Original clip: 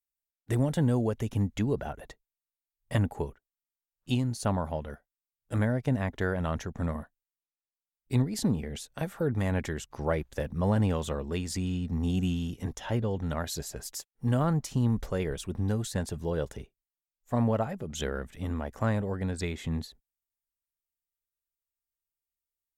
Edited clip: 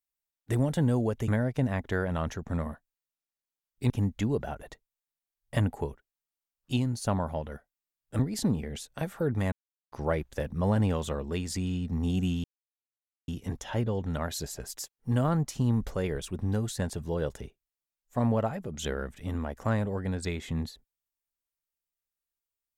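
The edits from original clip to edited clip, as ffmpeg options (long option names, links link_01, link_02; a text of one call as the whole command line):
ffmpeg -i in.wav -filter_complex "[0:a]asplit=7[link_01][link_02][link_03][link_04][link_05][link_06][link_07];[link_01]atrim=end=1.282[link_08];[link_02]atrim=start=5.568:end=8.192[link_09];[link_03]atrim=start=1.278:end=5.572[link_10];[link_04]atrim=start=8.188:end=9.52,asetpts=PTS-STARTPTS,afade=type=out:start_time=1.328:duration=0.004:curve=hsin[link_11];[link_05]atrim=start=9.52:end=9.92,asetpts=PTS-STARTPTS,volume=0[link_12];[link_06]atrim=start=9.92:end=12.44,asetpts=PTS-STARTPTS,afade=type=in:duration=0.004:curve=hsin,afade=type=out:start_time=2.516:duration=0.004:curve=hsin,apad=pad_dur=0.84[link_13];[link_07]atrim=start=12.44,asetpts=PTS-STARTPTS,afade=type=in:duration=0.004:curve=hsin[link_14];[link_08][link_09]acrossfade=duration=0.004:curve1=hsin:curve2=hsin[link_15];[link_15][link_10]acrossfade=duration=0.004:curve1=hsin:curve2=hsin[link_16];[link_11][link_12][link_13][link_14]concat=n=4:v=0:a=1[link_17];[link_16][link_17]acrossfade=duration=0.004:curve1=hsin:curve2=hsin" out.wav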